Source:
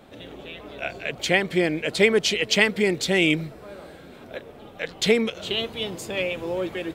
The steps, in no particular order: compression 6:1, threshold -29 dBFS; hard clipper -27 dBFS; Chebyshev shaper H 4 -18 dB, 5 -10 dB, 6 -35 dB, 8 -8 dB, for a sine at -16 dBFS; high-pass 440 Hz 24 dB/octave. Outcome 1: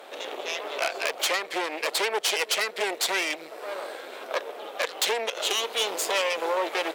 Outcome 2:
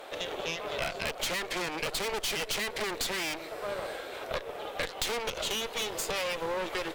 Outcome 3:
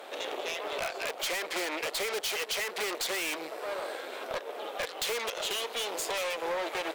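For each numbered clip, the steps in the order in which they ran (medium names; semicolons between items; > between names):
compression > hard clipper > Chebyshev shaper > high-pass; hard clipper > high-pass > Chebyshev shaper > compression; Chebyshev shaper > high-pass > compression > hard clipper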